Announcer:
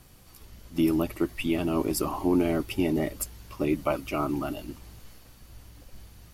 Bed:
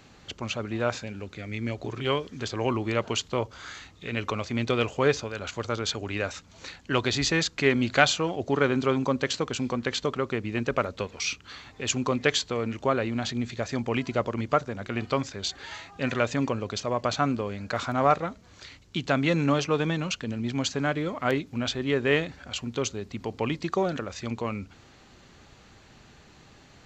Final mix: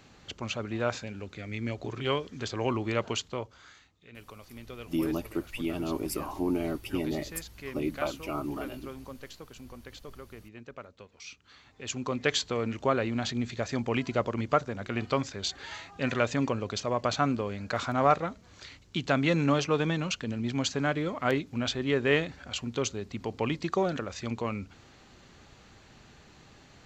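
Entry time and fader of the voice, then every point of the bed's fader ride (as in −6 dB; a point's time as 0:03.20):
4.15 s, −5.5 dB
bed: 0:03.09 −2.5 dB
0:04.03 −18.5 dB
0:11.05 −18.5 dB
0:12.45 −1.5 dB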